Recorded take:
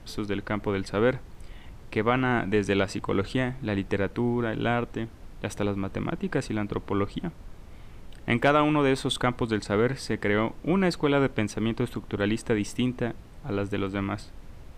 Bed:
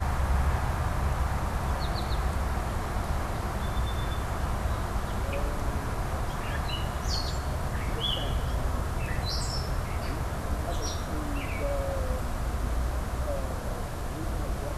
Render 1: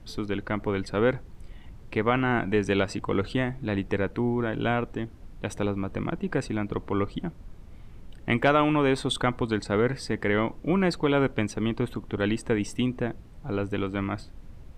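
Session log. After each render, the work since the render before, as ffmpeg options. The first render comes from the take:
-af "afftdn=nr=6:nf=-46"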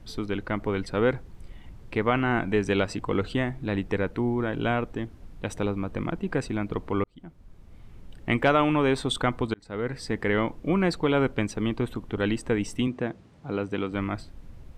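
-filter_complex "[0:a]asettb=1/sr,asplit=3[a][b][c];[a]atrim=end=12.874[d];[b]atrim=start=12.87:end=13.92,asetpts=PTS-STARTPTS,afade=t=in:d=0.004:c=qsin,afade=t=out:st=1.046:d=0.004:c=qsin,highpass=120,lowpass=7.9k[e];[c]atrim=start=13.916[f];[d][e]acrossfade=d=0.004:c1=hsin:c2=qsin[g];[g][f]acrossfade=d=0.004:c1=qsin:c2=hsin,asplit=3[h][i][j];[h]atrim=end=7.04,asetpts=PTS-STARTPTS,afade=t=out:st=7.036:d=0.004:c=hsin[k];[i]atrim=start=7.04:end=9.54,asetpts=PTS-STARTPTS,afade=t=in:d=1.34:c=qsin,afade=t=out:st=2.496:d=0.004:c=hsin[l];[j]atrim=start=9.54,asetpts=PTS-STARTPTS,afade=t=in:d=0.58[m];[k][l][m]concat=n=3:v=0:a=1"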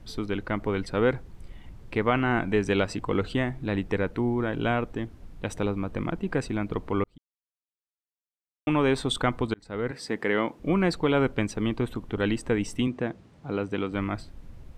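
-filter_complex "[0:a]asettb=1/sr,asplit=3[a][b][c];[a]atrim=end=9.914[d];[b]atrim=start=9.91:end=10.6,asetpts=PTS-STARTPTS,afade=t=in:d=0.004:c=qsin,afade=t=out:st=0.686:d=0.004:c=qsin,highpass=200[e];[c]atrim=start=10.596[f];[d][e]acrossfade=d=0.004:c1=hsin:c2=qsin[g];[g][f]acrossfade=d=0.004:c1=qsin:c2=hsin,asplit=3[h][i][j];[h]atrim=end=7.18,asetpts=PTS-STARTPTS,afade=t=out:st=7.176:d=0.004:c=hsin[k];[i]atrim=start=7.18:end=8.67,asetpts=PTS-STARTPTS,volume=0[l];[j]atrim=start=8.67,asetpts=PTS-STARTPTS,afade=t=in:d=0.004:c=hsin[m];[k][l][m]concat=n=3:v=0:a=1"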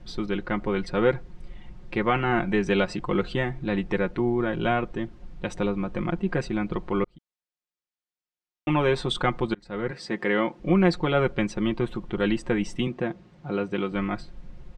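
-af "lowpass=5.9k,aecho=1:1:5.6:0.69"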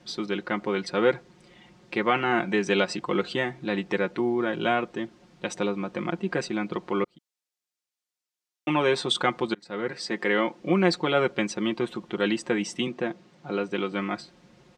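-af "highpass=210,equalizer=f=6.5k:t=o:w=1.9:g=7"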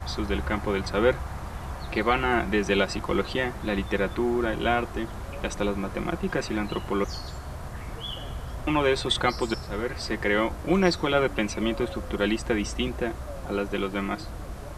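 -filter_complex "[1:a]volume=-6dB[a];[0:a][a]amix=inputs=2:normalize=0"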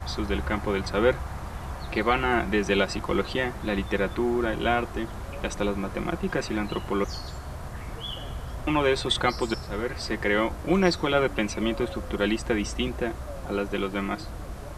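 -af anull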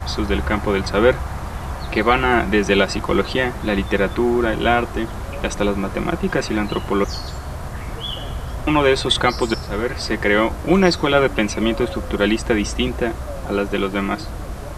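-af "volume=7.5dB,alimiter=limit=-1dB:level=0:latency=1"

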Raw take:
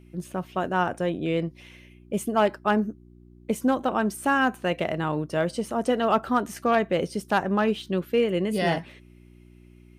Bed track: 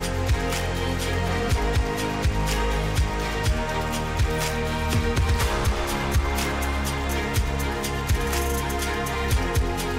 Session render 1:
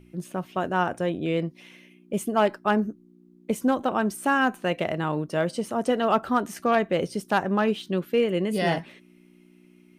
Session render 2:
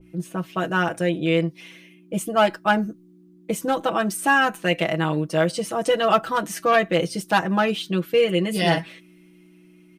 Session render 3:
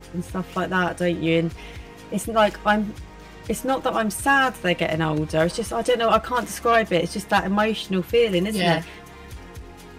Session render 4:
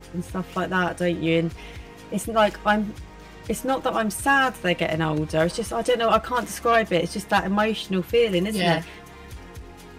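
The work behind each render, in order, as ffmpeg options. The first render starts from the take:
-af "bandreject=f=60:t=h:w=4,bandreject=f=120:t=h:w=4"
-af "aecho=1:1:6.1:0.86,adynamicequalizer=threshold=0.02:dfrequency=1600:dqfactor=0.7:tfrequency=1600:tqfactor=0.7:attack=5:release=100:ratio=0.375:range=3:mode=boostabove:tftype=highshelf"
-filter_complex "[1:a]volume=-16.5dB[a];[0:a][a]amix=inputs=2:normalize=0"
-af "volume=-1dB"

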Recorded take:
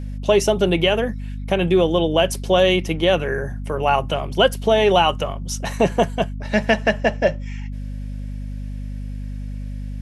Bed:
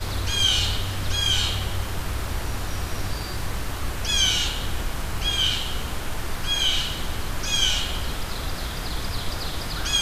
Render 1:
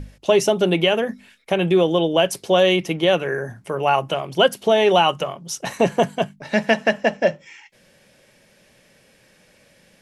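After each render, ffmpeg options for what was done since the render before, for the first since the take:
-af "bandreject=f=50:t=h:w=6,bandreject=f=100:t=h:w=6,bandreject=f=150:t=h:w=6,bandreject=f=200:t=h:w=6,bandreject=f=250:t=h:w=6"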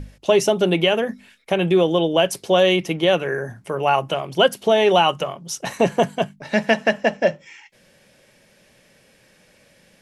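-af anull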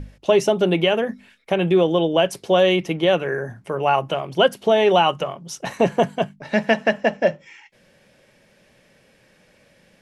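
-af "highshelf=f=4.5k:g=-7.5"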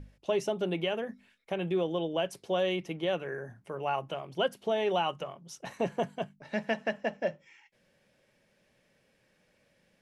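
-af "volume=-13dB"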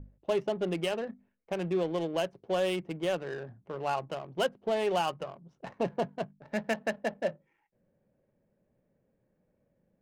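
-af "adynamicsmooth=sensitivity=8:basefreq=630"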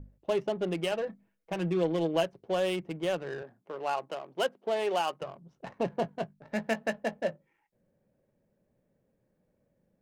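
-filter_complex "[0:a]asettb=1/sr,asplit=3[a][b][c];[a]atrim=end=0.914[d];[b]atrim=start=0.91:end=2.24,asetpts=PTS-STARTPTS,afade=t=in:d=0.004:c=qsin,afade=t=out:st=1.326:d=0.004:c=qsin,aecho=1:1:6.2:0.65,atrim=end_sample=58653[e];[c]atrim=start=2.236[f];[d][e]acrossfade=d=0.004:c1=hsin:c2=qsin[g];[g][f]acrossfade=d=0.004:c1=qsin:c2=hsin,asettb=1/sr,asplit=3[h][i][j];[h]atrim=end=3.424[k];[i]atrim=start=3.42:end=5.22,asetpts=PTS-STARTPTS,afade=t=in:d=0.004:c=qsin,afade=t=out:st=1.796:d=0.004:c=qsin,highpass=290[l];[j]atrim=start=5.216[m];[k][l]acrossfade=d=0.004:c1=hsin:c2=qsin[n];[n][m]acrossfade=d=0.004:c1=qsin:c2=hsin,asettb=1/sr,asplit=3[o][p][q];[o]atrim=end=5.964[r];[p]atrim=start=5.96:end=7.3,asetpts=PTS-STARTPTS,afade=t=in:d=0.004:c=qsin,afade=t=out:st=1.336:d=0.004:c=qsin,asplit=2[s][t];[t]adelay=18,volume=-11.5dB[u];[s][u]amix=inputs=2:normalize=0,atrim=end_sample=59094[v];[q]atrim=start=7.296[w];[r][v]acrossfade=d=0.004:c1=hsin:c2=qsin[x];[x][w]acrossfade=d=0.004:c1=qsin:c2=hsin"

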